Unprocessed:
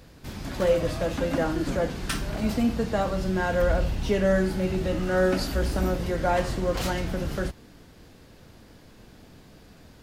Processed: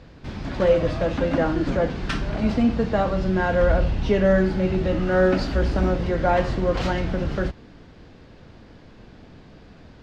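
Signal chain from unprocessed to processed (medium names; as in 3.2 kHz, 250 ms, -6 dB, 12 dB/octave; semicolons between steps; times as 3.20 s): distance through air 160 m; trim +4.5 dB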